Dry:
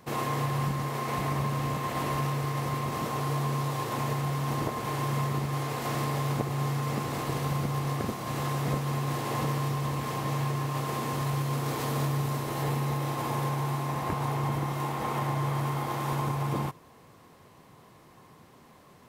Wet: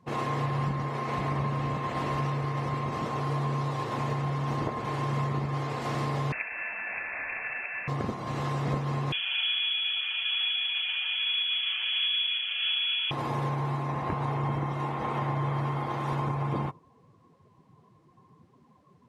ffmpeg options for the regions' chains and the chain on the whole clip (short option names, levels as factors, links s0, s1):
-filter_complex "[0:a]asettb=1/sr,asplit=3[s0][s1][s2];[s0]atrim=end=6.324[s3];[s1]atrim=start=6.32:end=7.88,asetpts=PTS-STARTPTS,afade=t=in:d=0.004:c=qsin,afade=t=out:st=1.556:d=0.004:c=qsin,aemphasis=mode=production:type=riaa,lowpass=f=2400:t=q:w=0.5098,lowpass=f=2400:t=q:w=0.6013,lowpass=f=2400:t=q:w=0.9,lowpass=f=2400:t=q:w=2.563,afreqshift=-2800[s4];[s2]atrim=start=7.876[s5];[s3][s4]acrossfade=d=0.004:c1=hsin:c2=qsin[s6];[s6][s5]acrossfade=d=0.004:c1=qsin:c2=hsin,asettb=1/sr,asplit=3[s7][s8][s9];[s7]atrim=end=9.124[s10];[s8]atrim=start=9.12:end=13.11,asetpts=PTS-STARTPTS,afade=t=in:d=0.004:c=qsin,afade=t=out:st=3.986:d=0.004:c=qsin,acrossover=split=2600[s11][s12];[s12]acompressor=threshold=0.00282:ratio=4:attack=1:release=60[s13];[s11][s13]amix=inputs=2:normalize=0,lowpass=f=3000:t=q:w=0.5098,lowpass=f=3000:t=q:w=0.6013,lowpass=f=3000:t=q:w=0.9,lowpass=f=3000:t=q:w=2.563,afreqshift=-3500,aecho=1:1:5.3:0.31,atrim=end_sample=175959[s14];[s9]atrim=start=13.106[s15];[s10][s14]acrossfade=d=0.004:c1=hsin:c2=qsin[s16];[s16][s15]acrossfade=d=0.004:c1=qsin:c2=hsin,afftdn=nr=15:nf=-47,lowpass=8100"